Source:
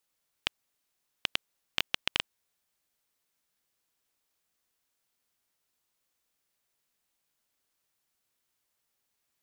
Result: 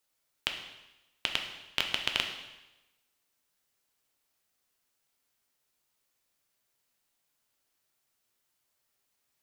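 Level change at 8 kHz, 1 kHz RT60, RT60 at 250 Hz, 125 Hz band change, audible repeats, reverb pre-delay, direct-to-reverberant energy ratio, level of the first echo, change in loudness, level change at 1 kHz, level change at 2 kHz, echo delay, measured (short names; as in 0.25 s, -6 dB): +1.5 dB, 1.0 s, 1.0 s, +1.5 dB, none, 4 ms, 3.0 dB, none, +1.0 dB, +2.0 dB, +1.5 dB, none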